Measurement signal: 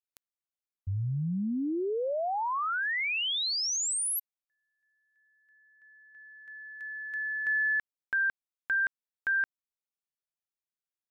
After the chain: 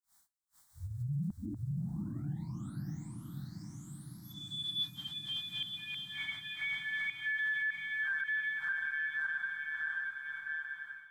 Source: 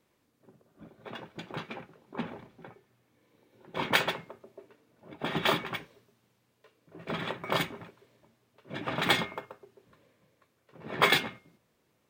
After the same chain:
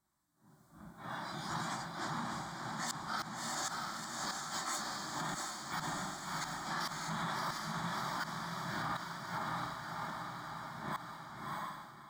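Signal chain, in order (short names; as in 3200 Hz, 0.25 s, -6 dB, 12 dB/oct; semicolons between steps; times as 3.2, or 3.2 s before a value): phase scrambler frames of 0.2 s; echoes that change speed 0.471 s, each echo +6 st, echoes 2; flipped gate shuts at -22 dBFS, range -38 dB; fixed phaser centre 1100 Hz, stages 4; diffused feedback echo 0.653 s, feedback 64%, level -4 dB; AGC gain up to 11 dB; limiter -23 dBFS; thirty-one-band EQ 100 Hz -11 dB, 250 Hz -7 dB, 500 Hz -8 dB, 4000 Hz +3 dB, 8000 Hz +6 dB; gain -5.5 dB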